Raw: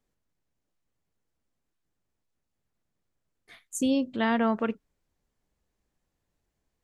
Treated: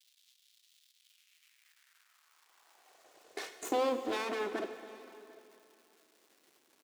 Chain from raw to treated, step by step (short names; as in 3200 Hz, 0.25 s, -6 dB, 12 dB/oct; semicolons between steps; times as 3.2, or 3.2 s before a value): minimum comb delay 2.7 ms; Doppler pass-by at 3.09, 14 m/s, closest 8.3 m; recorder AGC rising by 8.2 dB/s; Chebyshev low-pass 7000 Hz; low shelf 410 Hz +8 dB; full-wave rectifier; crackle 500/s -54 dBFS; high-pass sweep 3500 Hz -> 320 Hz, 0.94–3.91; on a send: echo 0.748 s -23.5 dB; on the sum: plate-style reverb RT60 2.9 s, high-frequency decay 0.95×, DRR 8.5 dB